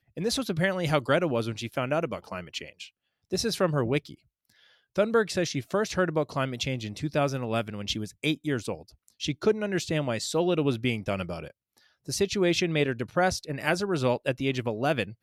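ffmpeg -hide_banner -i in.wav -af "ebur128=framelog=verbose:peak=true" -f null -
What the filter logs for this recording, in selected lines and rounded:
Integrated loudness:
  I:         -28.1 LUFS
  Threshold: -38.6 LUFS
Loudness range:
  LRA:         3.0 LU
  Threshold: -48.9 LUFS
  LRA low:   -30.5 LUFS
  LRA high:  -27.5 LUFS
True peak:
  Peak:       -9.1 dBFS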